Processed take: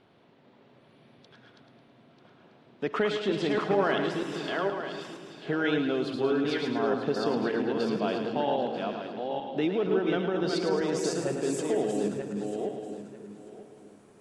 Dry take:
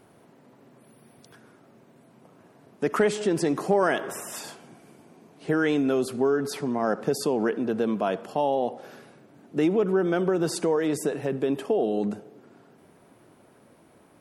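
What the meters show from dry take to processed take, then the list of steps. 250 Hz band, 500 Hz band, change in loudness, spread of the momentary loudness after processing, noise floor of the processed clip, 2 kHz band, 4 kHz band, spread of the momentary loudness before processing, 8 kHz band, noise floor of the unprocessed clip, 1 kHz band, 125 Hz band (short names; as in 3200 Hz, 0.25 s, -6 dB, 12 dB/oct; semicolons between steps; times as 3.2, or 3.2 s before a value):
-2.5 dB, -2.5 dB, -3.5 dB, 12 LU, -59 dBFS, -1.0 dB, +2.5 dB, 10 LU, -5.0 dB, -57 dBFS, -2.0 dB, -2.5 dB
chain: regenerating reverse delay 0.47 s, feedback 42%, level -3 dB; split-band echo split 410 Hz, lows 0.287 s, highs 0.108 s, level -8 dB; low-pass sweep 3600 Hz -> 7700 Hz, 10.37–11.29; gain -5.5 dB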